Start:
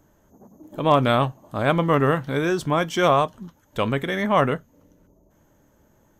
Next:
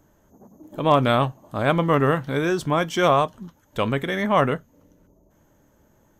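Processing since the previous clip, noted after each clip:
no processing that can be heard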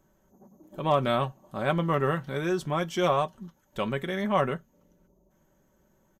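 comb filter 5.3 ms, depth 51%
level −7.5 dB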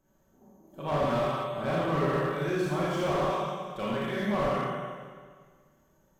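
four-comb reverb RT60 1.7 s, combs from 27 ms, DRR −7 dB
slew-rate limiting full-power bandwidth 100 Hz
level −7.5 dB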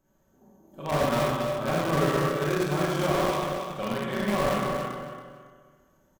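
in parallel at −9 dB: bit reduction 4 bits
on the sum: repeating echo 278 ms, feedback 25%, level −6.5 dB

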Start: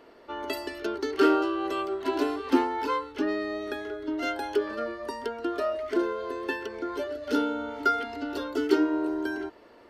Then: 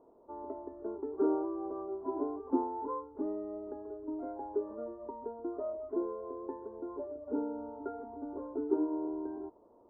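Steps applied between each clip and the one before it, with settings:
elliptic low-pass filter 1,000 Hz, stop band 70 dB
level −7.5 dB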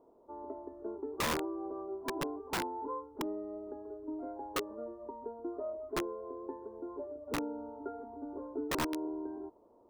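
wrap-around overflow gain 26 dB
level −1.5 dB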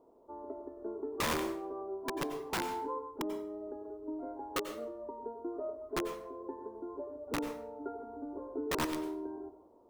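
dense smooth reverb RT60 0.53 s, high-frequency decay 0.8×, pre-delay 80 ms, DRR 8.5 dB

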